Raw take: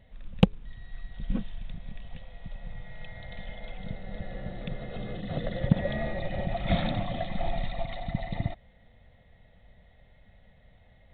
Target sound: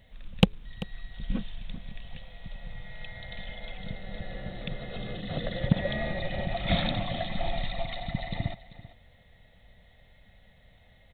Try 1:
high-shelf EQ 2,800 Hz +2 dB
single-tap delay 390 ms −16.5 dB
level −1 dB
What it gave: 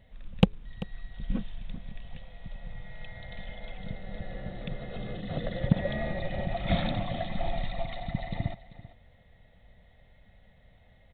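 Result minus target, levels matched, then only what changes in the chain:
4,000 Hz band −5.0 dB
change: high-shelf EQ 2,800 Hz +12 dB

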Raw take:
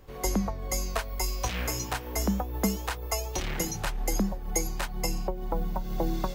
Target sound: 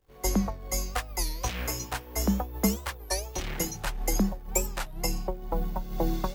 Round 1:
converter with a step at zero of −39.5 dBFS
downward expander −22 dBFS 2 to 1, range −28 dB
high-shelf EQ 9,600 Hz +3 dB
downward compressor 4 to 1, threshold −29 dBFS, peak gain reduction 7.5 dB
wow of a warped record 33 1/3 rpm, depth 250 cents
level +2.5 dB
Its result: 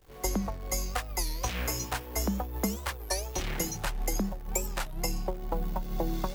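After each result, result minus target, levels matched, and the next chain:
downward compressor: peak gain reduction +7.5 dB; converter with a step at zero: distortion +9 dB
converter with a step at zero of −39.5 dBFS
downward expander −22 dBFS 2 to 1, range −28 dB
high-shelf EQ 9,600 Hz +3 dB
wow of a warped record 33 1/3 rpm, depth 250 cents
level +2.5 dB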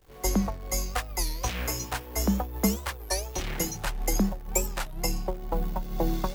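converter with a step at zero: distortion +9 dB
converter with a step at zero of −49 dBFS
downward expander −22 dBFS 2 to 1, range −28 dB
high-shelf EQ 9,600 Hz +3 dB
wow of a warped record 33 1/3 rpm, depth 250 cents
level +2.5 dB

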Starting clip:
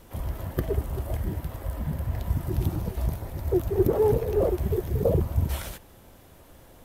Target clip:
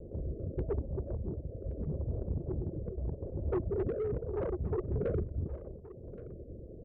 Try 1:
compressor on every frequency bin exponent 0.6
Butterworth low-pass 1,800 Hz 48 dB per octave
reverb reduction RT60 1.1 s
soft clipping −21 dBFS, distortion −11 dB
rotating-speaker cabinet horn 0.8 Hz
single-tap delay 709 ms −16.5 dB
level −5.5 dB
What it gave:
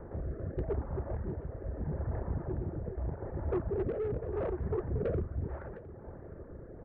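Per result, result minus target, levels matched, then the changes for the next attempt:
echo 413 ms early; 2,000 Hz band +5.0 dB
change: single-tap delay 1,122 ms −16.5 dB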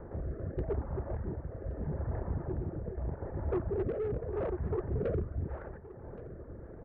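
2,000 Hz band +5.0 dB
change: Butterworth low-pass 600 Hz 48 dB per octave

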